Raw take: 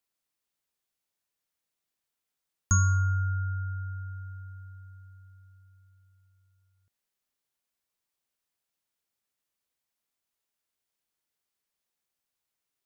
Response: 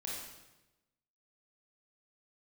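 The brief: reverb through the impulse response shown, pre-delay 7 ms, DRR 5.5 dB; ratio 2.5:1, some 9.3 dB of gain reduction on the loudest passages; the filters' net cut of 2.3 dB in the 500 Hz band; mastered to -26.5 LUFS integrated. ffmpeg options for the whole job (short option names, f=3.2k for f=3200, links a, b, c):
-filter_complex "[0:a]equalizer=f=500:t=o:g=-4,acompressor=threshold=-33dB:ratio=2.5,asplit=2[a][b];[1:a]atrim=start_sample=2205,adelay=7[c];[b][c]afir=irnorm=-1:irlink=0,volume=-6dB[d];[a][d]amix=inputs=2:normalize=0,volume=14dB"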